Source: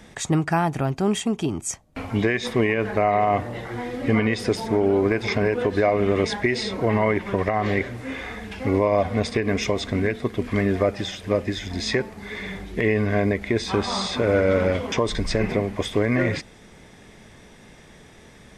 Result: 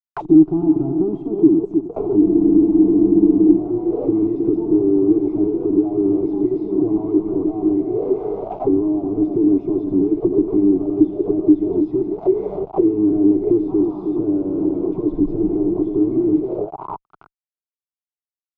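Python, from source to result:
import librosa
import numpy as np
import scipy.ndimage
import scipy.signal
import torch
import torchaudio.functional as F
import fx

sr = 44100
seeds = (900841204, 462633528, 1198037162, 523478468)

p1 = fx.wiener(x, sr, points=9)
p2 = fx.peak_eq(p1, sr, hz=110.0, db=-13.5, octaves=2.6)
p3 = fx.hpss(p2, sr, part='harmonic', gain_db=-7)
p4 = p3 + fx.echo_split(p3, sr, split_hz=720.0, low_ms=314, high_ms=82, feedback_pct=52, wet_db=-12, dry=0)
p5 = fx.fuzz(p4, sr, gain_db=47.0, gate_db=-43.0)
p6 = fx.fixed_phaser(p5, sr, hz=350.0, stages=8)
p7 = fx.spec_freeze(p6, sr, seeds[0], at_s=2.24, hold_s=1.33)
p8 = fx.envelope_lowpass(p7, sr, base_hz=310.0, top_hz=1600.0, q=7.2, full_db=-16.5, direction='down')
y = p8 * librosa.db_to_amplitude(-5.0)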